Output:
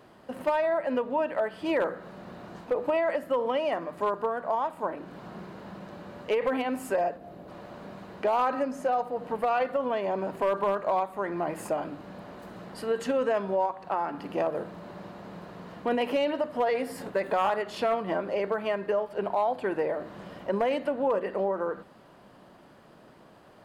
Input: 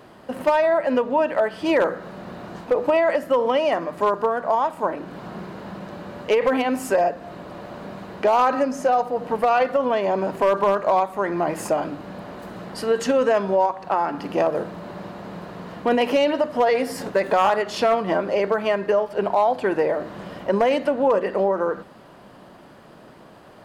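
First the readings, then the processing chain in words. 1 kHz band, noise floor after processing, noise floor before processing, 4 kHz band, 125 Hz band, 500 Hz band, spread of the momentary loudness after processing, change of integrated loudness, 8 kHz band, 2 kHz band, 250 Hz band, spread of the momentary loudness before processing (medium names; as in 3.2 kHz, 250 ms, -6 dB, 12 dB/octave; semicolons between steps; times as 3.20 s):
-7.5 dB, -54 dBFS, -47 dBFS, -8.5 dB, -7.5 dB, -7.5 dB, 17 LU, -7.5 dB, -10.5 dB, -7.5 dB, -7.5 dB, 17 LU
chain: time-frequency box 7.17–7.48 s, 860–10000 Hz -7 dB; dynamic bell 5.8 kHz, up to -7 dB, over -54 dBFS, Q 2.2; trim -7.5 dB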